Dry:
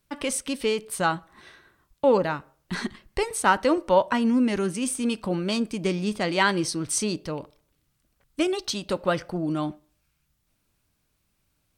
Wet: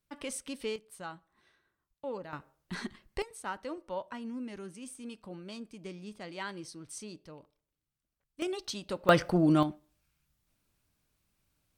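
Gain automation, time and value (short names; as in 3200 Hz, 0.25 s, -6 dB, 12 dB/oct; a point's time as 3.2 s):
-11 dB
from 0.76 s -19 dB
from 2.33 s -8.5 dB
from 3.22 s -18 dB
from 8.42 s -9 dB
from 9.09 s +3 dB
from 9.63 s -4.5 dB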